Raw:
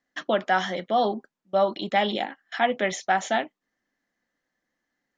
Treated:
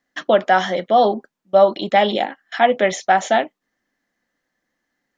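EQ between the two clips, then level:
dynamic equaliser 560 Hz, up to +5 dB, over −36 dBFS, Q 1.3
+5.0 dB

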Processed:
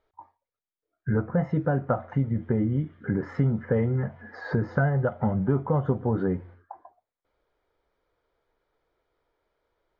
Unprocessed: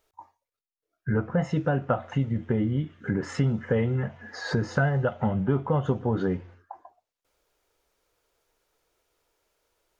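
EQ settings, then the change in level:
notch filter 2,700 Hz, Q 5.8
dynamic equaliser 3,400 Hz, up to −7 dB, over −56 dBFS, Q 1.6
high-frequency loss of the air 330 metres
+1.0 dB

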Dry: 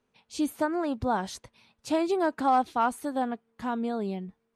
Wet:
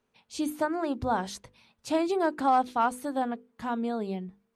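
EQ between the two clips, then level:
mains-hum notches 50/100/150/200/250/300/350/400/450/500 Hz
0.0 dB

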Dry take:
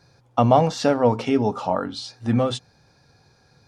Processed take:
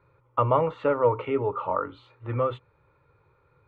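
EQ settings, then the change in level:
low-pass with resonance 1,600 Hz, resonance Q 2.6
phaser with its sweep stopped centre 1,100 Hz, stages 8
−2.5 dB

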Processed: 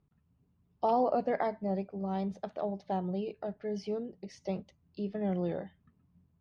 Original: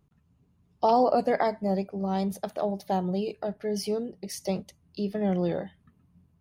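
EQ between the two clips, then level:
low-pass filter 8,700 Hz
dynamic equaliser 4,600 Hz, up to −4 dB, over −56 dBFS, Q 5.5
high-frequency loss of the air 160 metres
−5.5 dB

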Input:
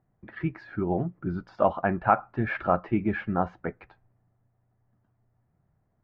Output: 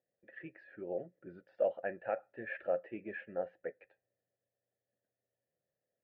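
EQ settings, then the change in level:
formant filter e
0.0 dB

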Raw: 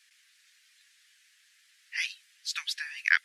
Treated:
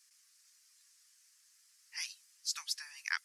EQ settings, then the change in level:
flat-topped bell 2,400 Hz −15 dB
+1.5 dB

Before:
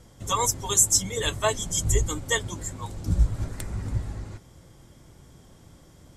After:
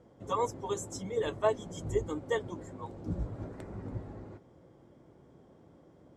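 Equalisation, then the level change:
resonant band-pass 430 Hz, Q 0.89
0.0 dB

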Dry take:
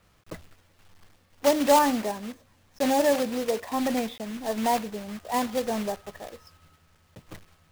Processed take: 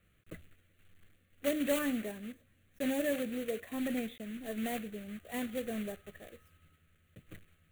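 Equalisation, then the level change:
phaser with its sweep stopped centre 2,200 Hz, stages 4
−6.0 dB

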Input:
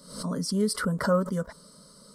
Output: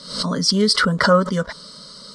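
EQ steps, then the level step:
low-pass filter 5,900 Hz 12 dB per octave
parametric band 3,600 Hz +14 dB 2.4 octaves
+7.0 dB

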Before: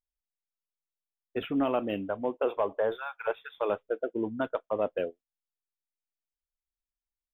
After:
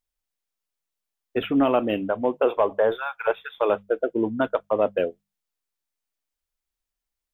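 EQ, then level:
mains-hum notches 50/100/150/200 Hz
+7.5 dB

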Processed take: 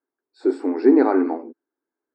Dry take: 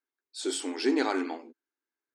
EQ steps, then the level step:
moving average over 14 samples
high-pass filter 300 Hz 12 dB per octave
spectral tilt −4 dB per octave
+8.5 dB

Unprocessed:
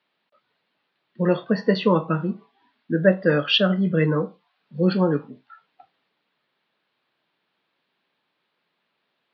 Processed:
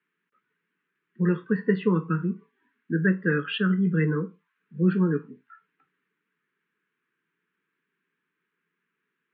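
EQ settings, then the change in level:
Butterworth band-reject 680 Hz, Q 0.78
loudspeaker in its box 150–2,400 Hz, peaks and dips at 170 Hz +7 dB, 430 Hz +8 dB, 880 Hz +3 dB, 1,600 Hz +5 dB
−4.0 dB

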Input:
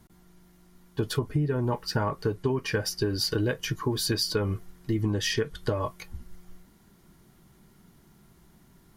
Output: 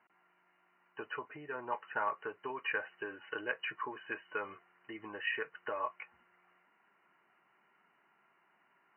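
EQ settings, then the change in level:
high-pass filter 1,000 Hz 12 dB per octave
linear-phase brick-wall low-pass 3,000 Hz
high-frequency loss of the air 250 metres
+1.5 dB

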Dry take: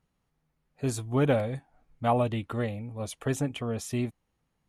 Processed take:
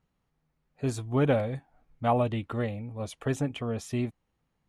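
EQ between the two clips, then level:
high-shelf EQ 7,800 Hz −10.5 dB
0.0 dB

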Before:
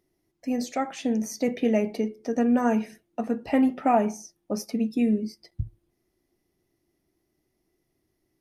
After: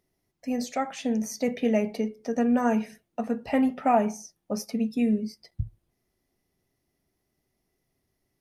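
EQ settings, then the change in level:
parametric band 330 Hz −13.5 dB 0.26 octaves
0.0 dB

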